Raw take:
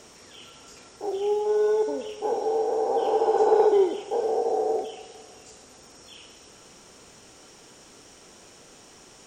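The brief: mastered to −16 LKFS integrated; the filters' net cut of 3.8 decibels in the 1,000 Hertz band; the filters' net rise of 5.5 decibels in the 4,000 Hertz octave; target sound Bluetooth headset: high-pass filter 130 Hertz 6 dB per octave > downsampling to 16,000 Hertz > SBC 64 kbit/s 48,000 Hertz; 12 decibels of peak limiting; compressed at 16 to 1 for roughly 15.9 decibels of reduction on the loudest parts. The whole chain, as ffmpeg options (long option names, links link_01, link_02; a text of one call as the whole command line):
ffmpeg -i in.wav -af "equalizer=frequency=1000:width_type=o:gain=-5.5,equalizer=frequency=4000:width_type=o:gain=8.5,acompressor=threshold=-32dB:ratio=16,alimiter=level_in=12.5dB:limit=-24dB:level=0:latency=1,volume=-12.5dB,highpass=frequency=130:poles=1,aresample=16000,aresample=44100,volume=28.5dB" -ar 48000 -c:a sbc -b:a 64k out.sbc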